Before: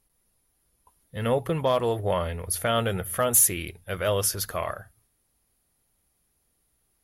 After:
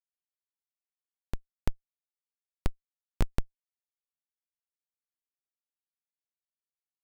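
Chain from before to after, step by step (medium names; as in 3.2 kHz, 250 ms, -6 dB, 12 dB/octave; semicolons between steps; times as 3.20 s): zero-crossing glitches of -18.5 dBFS; treble shelf 4.6 kHz -8.5 dB; Schmitt trigger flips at -14.5 dBFS; trim +7.5 dB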